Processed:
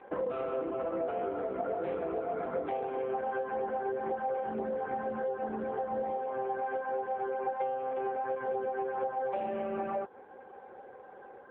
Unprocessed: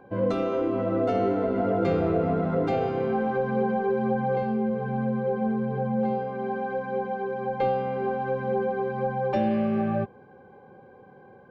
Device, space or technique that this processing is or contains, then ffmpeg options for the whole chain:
voicemail: -af "highpass=420,lowpass=3100,acompressor=threshold=-35dB:ratio=6,volume=5dB" -ar 8000 -c:a libopencore_amrnb -b:a 5900

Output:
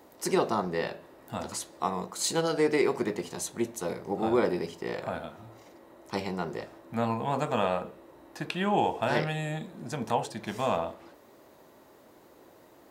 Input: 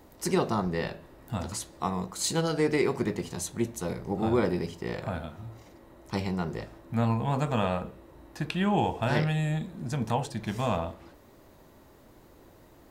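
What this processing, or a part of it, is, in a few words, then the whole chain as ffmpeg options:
filter by subtraction: -filter_complex "[0:a]asplit=2[link_01][link_02];[link_02]lowpass=480,volume=-1[link_03];[link_01][link_03]amix=inputs=2:normalize=0"

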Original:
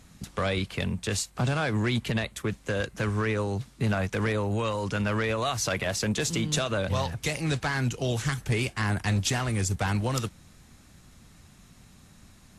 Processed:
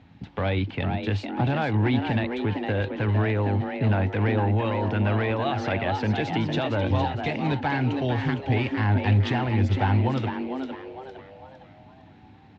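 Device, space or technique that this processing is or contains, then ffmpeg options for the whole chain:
frequency-shifting delay pedal into a guitar cabinet: -filter_complex "[0:a]asplit=6[link_01][link_02][link_03][link_04][link_05][link_06];[link_02]adelay=458,afreqshift=130,volume=-7dB[link_07];[link_03]adelay=916,afreqshift=260,volume=-14.7dB[link_08];[link_04]adelay=1374,afreqshift=390,volume=-22.5dB[link_09];[link_05]adelay=1832,afreqshift=520,volume=-30.2dB[link_10];[link_06]adelay=2290,afreqshift=650,volume=-38dB[link_11];[link_01][link_07][link_08][link_09][link_10][link_11]amix=inputs=6:normalize=0,highpass=76,equalizer=frequency=100:width_type=q:width=4:gain=9,equalizer=frequency=280:width_type=q:width=4:gain=7,equalizer=frequency=840:width_type=q:width=4:gain=9,equalizer=frequency=1200:width_type=q:width=4:gain=-6,lowpass=frequency=3400:width=0.5412,lowpass=frequency=3400:width=1.3066"

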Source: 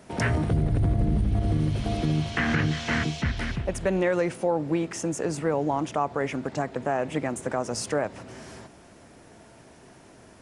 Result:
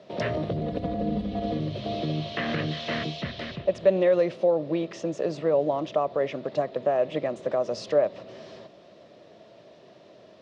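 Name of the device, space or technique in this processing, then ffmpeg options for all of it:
kitchen radio: -filter_complex "[0:a]asettb=1/sr,asplit=3[link_01][link_02][link_03];[link_01]atrim=end=0.614[link_04];[link_02]atrim=start=0.61:end=1.59,asetpts=PTS-STARTPTS,afade=type=in:duration=0.004:curve=qsin,afade=type=out:start_time=0.976:duration=0.004:curve=qsin,aecho=1:1:4.1:1,atrim=end_sample=43218[link_05];[link_03]atrim=start=1.586[link_06];[link_04][link_05]acrossfade=duration=0.004:curve1=hsin:curve2=qsin[link_07];[link_07][link_06]acrossfade=duration=0.004:curve1=qsin:curve2=hsin,highpass=180,equalizer=frequency=260:width_type=q:width=4:gain=-7,equalizer=frequency=590:width_type=q:width=4:gain=10,equalizer=frequency=860:width_type=q:width=4:gain=-9,equalizer=frequency=1500:width_type=q:width=4:gain=-10,equalizer=frequency=2200:width_type=q:width=4:gain=-5,equalizer=frequency=3800:width_type=q:width=4:gain=5,lowpass=frequency=4600:width=0.5412,lowpass=frequency=4600:width=1.3066"

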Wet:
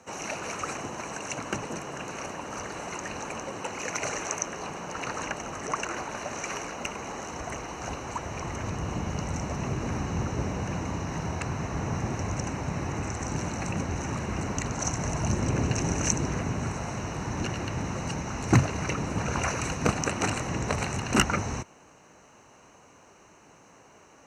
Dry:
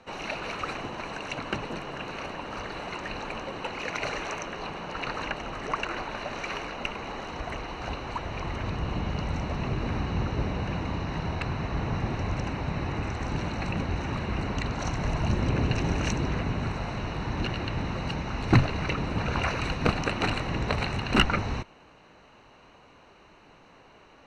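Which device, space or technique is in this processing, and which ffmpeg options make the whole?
budget condenser microphone: -af "highpass=69,highshelf=frequency=5100:width_type=q:width=3:gain=9"

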